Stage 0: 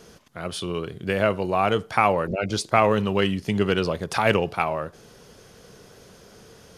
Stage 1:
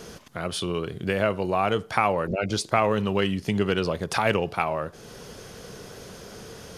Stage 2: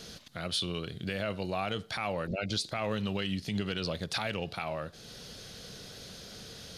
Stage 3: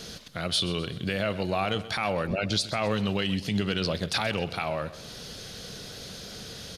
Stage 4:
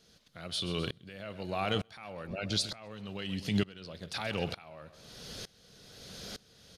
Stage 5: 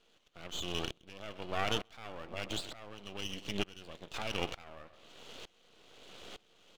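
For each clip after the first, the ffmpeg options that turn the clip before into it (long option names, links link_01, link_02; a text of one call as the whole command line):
ffmpeg -i in.wav -af "acompressor=threshold=-43dB:ratio=1.5,volume=7dB" out.wav
ffmpeg -i in.wav -af "equalizer=frequency=400:width_type=o:width=0.67:gain=-6,equalizer=frequency=1000:width_type=o:width=0.67:gain=-7,equalizer=frequency=4000:width_type=o:width=0.67:gain=11,alimiter=limit=-16dB:level=0:latency=1:release=60,volume=-5dB" out.wav
ffmpeg -i in.wav -af "aecho=1:1:129|258|387|516:0.158|0.0792|0.0396|0.0198,volume=5.5dB" out.wav
ffmpeg -i in.wav -af "aeval=exprs='val(0)*pow(10,-24*if(lt(mod(-1.1*n/s,1),2*abs(-1.1)/1000),1-mod(-1.1*n/s,1)/(2*abs(-1.1)/1000),(mod(-1.1*n/s,1)-2*abs(-1.1)/1000)/(1-2*abs(-1.1)/1000))/20)':channel_layout=same" out.wav
ffmpeg -i in.wav -af "highpass=330,equalizer=frequency=330:width_type=q:width=4:gain=5,equalizer=frequency=750:width_type=q:width=4:gain=3,equalizer=frequency=1200:width_type=q:width=4:gain=4,equalizer=frequency=1700:width_type=q:width=4:gain=-7,equalizer=frequency=2900:width_type=q:width=4:gain=7,lowpass=frequency=3400:width=0.5412,lowpass=frequency=3400:width=1.3066,aeval=exprs='max(val(0),0)':channel_layout=same,volume=1.5dB" out.wav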